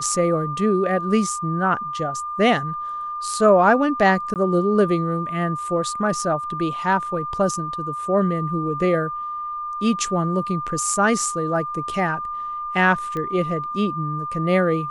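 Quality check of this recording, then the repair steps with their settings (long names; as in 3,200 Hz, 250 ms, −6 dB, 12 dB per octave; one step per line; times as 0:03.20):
whistle 1,200 Hz −26 dBFS
0:04.34–0:04.36: drop-out 18 ms
0:13.17: click −17 dBFS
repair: click removal
notch filter 1,200 Hz, Q 30
repair the gap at 0:04.34, 18 ms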